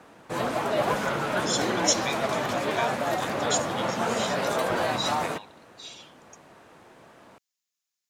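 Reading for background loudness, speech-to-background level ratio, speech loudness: -27.5 LUFS, -5.0 dB, -32.5 LUFS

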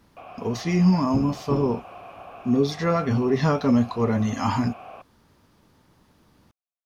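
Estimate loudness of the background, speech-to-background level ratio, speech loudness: -42.5 LUFS, 19.0 dB, -23.5 LUFS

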